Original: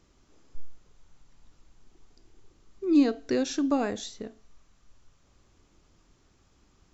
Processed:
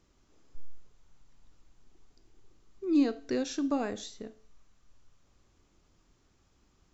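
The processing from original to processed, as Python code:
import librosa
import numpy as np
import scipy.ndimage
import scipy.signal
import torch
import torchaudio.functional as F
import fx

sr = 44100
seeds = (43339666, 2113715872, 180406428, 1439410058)

y = fx.rev_schroeder(x, sr, rt60_s=0.43, comb_ms=25, drr_db=16.5)
y = F.gain(torch.from_numpy(y), -4.5).numpy()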